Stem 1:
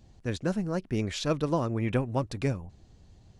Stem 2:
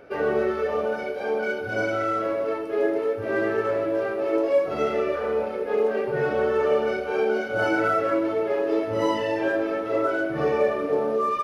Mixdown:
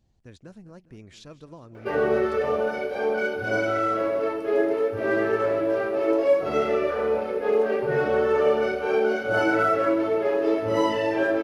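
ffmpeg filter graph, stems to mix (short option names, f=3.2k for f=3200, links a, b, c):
-filter_complex "[0:a]acompressor=threshold=-32dB:ratio=2,volume=-12dB,asplit=2[a][b];[b]volume=-18dB[c];[1:a]adelay=1750,volume=1dB[d];[c]aecho=0:1:204|408|612|816|1020|1224|1428|1632:1|0.52|0.27|0.141|0.0731|0.038|0.0198|0.0103[e];[a][d][e]amix=inputs=3:normalize=0"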